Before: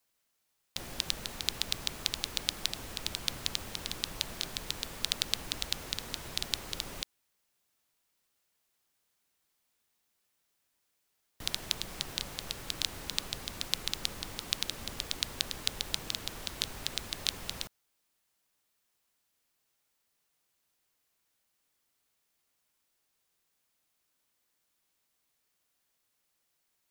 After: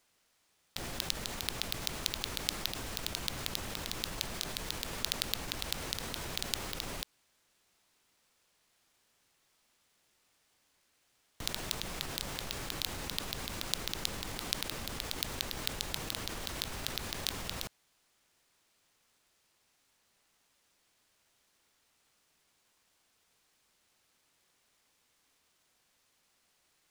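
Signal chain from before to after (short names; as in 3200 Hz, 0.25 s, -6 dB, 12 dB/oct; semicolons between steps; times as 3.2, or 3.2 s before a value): in parallel at 0 dB: negative-ratio compressor -45 dBFS; on the sum: sample-rate reducer 18000 Hz, jitter 20%; gain -4 dB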